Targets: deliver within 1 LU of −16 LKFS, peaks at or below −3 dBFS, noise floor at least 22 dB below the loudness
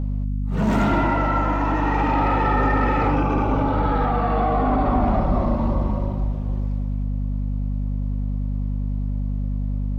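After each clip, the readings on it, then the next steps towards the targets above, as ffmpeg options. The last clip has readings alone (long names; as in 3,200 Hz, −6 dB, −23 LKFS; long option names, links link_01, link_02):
mains hum 50 Hz; hum harmonics up to 250 Hz; level of the hum −21 dBFS; integrated loudness −22.5 LKFS; sample peak −8.5 dBFS; target loudness −16.0 LKFS
→ -af "bandreject=frequency=50:width_type=h:width=4,bandreject=frequency=100:width_type=h:width=4,bandreject=frequency=150:width_type=h:width=4,bandreject=frequency=200:width_type=h:width=4,bandreject=frequency=250:width_type=h:width=4"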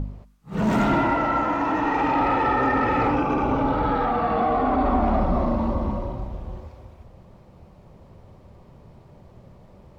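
mains hum none found; integrated loudness −22.5 LKFS; sample peak −10.5 dBFS; target loudness −16.0 LKFS
→ -af "volume=6.5dB"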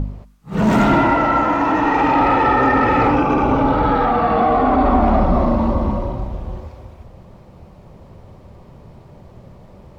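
integrated loudness −16.0 LKFS; sample peak −4.0 dBFS; background noise floor −44 dBFS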